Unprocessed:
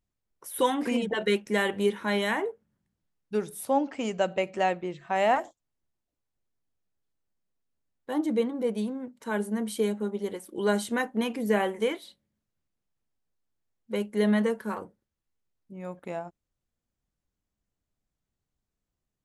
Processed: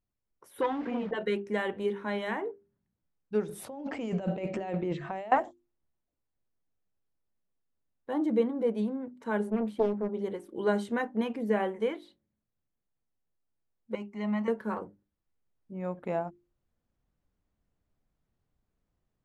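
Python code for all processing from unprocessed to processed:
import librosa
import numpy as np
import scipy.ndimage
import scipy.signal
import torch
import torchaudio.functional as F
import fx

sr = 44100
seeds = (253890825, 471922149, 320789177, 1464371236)

y = fx.chain(x, sr, fx.delta_mod(bps=64000, step_db=-33.5),
    fx.lowpass(hz=3000.0, slope=12),
    fx.transformer_sat(knee_hz=790.0), at=(0.61, 1.11))
y = fx.chain(y, sr, fx.dynamic_eq(hz=1300.0, q=0.87, threshold_db=-38.0, ratio=4.0, max_db=-5),
    fx.over_compress(threshold_db=-37.0, ratio=-1.0), at=(3.49, 5.32))
y = fx.chain(y, sr, fx.peak_eq(hz=7100.0, db=-13.0, octaves=2.7),
    fx.doppler_dist(depth_ms=0.62), at=(9.5, 10.14))
y = fx.chain(y, sr, fx.low_shelf(hz=370.0, db=-5.0),
    fx.fixed_phaser(hz=2400.0, stages=8), at=(13.95, 14.48))
y = fx.rider(y, sr, range_db=10, speed_s=2.0)
y = fx.lowpass(y, sr, hz=1500.0, slope=6)
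y = fx.hum_notches(y, sr, base_hz=50, count=8)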